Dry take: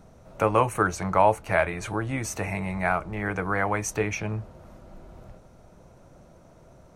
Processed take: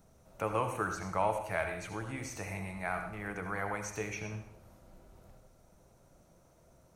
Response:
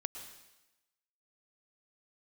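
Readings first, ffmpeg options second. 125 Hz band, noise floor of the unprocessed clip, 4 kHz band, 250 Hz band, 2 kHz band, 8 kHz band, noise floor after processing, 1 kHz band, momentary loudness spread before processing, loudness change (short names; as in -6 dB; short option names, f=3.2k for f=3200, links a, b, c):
-11.0 dB, -53 dBFS, -8.0 dB, -11.0 dB, -9.5 dB, -10.0 dB, -64 dBFS, -10.5 dB, 9 LU, -10.5 dB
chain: -filter_complex "[0:a]acrossover=split=5700[a][b];[b]acompressor=threshold=-51dB:ratio=4:attack=1:release=60[c];[a][c]amix=inputs=2:normalize=0,aemphasis=mode=production:type=50kf[d];[1:a]atrim=start_sample=2205,asetrate=70560,aresample=44100[e];[d][e]afir=irnorm=-1:irlink=0,volume=-6dB"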